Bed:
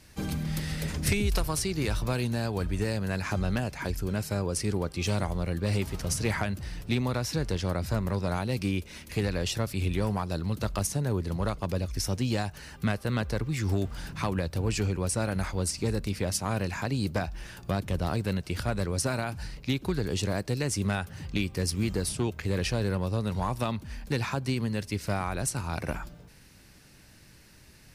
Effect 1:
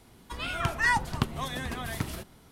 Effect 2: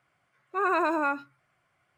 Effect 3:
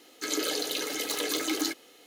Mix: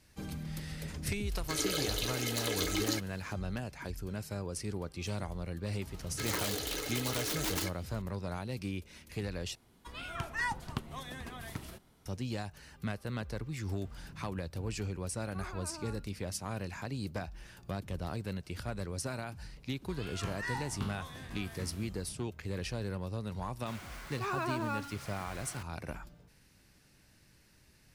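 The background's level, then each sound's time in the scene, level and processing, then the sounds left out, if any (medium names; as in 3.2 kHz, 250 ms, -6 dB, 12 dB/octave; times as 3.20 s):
bed -9 dB
1.27 s: add 3 -4 dB
5.96 s: add 3 -5 dB + integer overflow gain 23 dB
9.55 s: replace with 1 -9.5 dB
14.80 s: add 2 -17 dB + peak limiter -23 dBFS
19.59 s: add 1 -16 dB + spectral sustain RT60 0.61 s
23.66 s: add 2 -12 dB + jump at every zero crossing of -31 dBFS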